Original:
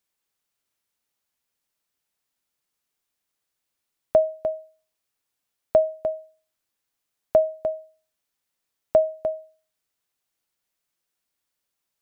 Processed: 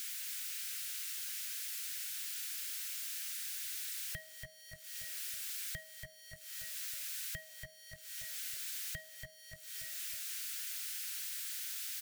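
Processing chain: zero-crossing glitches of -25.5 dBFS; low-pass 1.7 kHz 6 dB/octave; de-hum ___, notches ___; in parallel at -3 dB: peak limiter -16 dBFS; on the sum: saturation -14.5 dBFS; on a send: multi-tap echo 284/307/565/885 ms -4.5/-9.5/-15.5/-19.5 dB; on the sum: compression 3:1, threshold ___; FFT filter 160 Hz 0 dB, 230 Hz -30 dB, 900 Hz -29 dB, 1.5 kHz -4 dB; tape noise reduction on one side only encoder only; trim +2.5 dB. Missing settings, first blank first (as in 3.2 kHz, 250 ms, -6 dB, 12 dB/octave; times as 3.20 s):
193.4 Hz, 39, -37 dBFS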